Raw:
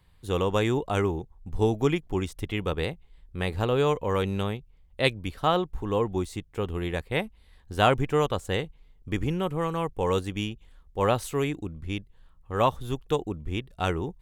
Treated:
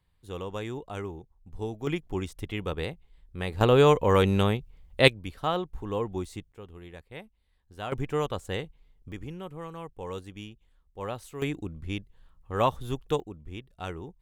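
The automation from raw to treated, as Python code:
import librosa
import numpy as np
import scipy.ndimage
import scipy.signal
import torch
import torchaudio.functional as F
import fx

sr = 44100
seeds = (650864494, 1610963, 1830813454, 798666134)

y = fx.gain(x, sr, db=fx.steps((0.0, -10.5), (1.87, -3.5), (3.61, 5.0), (5.08, -4.5), (6.52, -15.5), (7.92, -4.5), (9.12, -11.5), (11.42, -1.5), (13.2, -9.5)))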